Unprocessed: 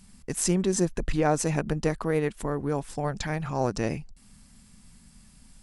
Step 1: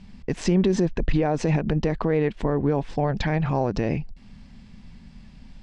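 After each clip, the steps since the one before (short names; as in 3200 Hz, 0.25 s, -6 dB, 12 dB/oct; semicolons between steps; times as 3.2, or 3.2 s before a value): Bessel low-pass 3000 Hz, order 4; bell 1300 Hz -6.5 dB 0.58 oct; limiter -21.5 dBFS, peak gain reduction 10 dB; gain +9 dB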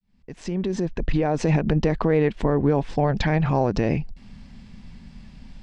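opening faded in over 1.63 s; gain +2.5 dB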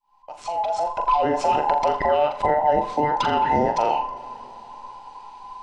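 band inversion scrambler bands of 1000 Hz; on a send: flutter echo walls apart 7.1 m, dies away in 0.32 s; on the sum: plate-style reverb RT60 3.9 s, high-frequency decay 0.75×, DRR 16.5 dB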